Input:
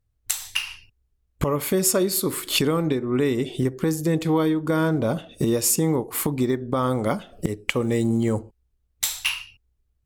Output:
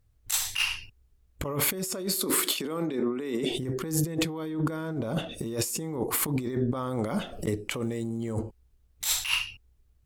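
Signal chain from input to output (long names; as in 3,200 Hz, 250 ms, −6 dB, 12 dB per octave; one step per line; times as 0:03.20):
0:02.14–0:03.51: high-pass filter 190 Hz 24 dB per octave
compressor whose output falls as the input rises −30 dBFS, ratio −1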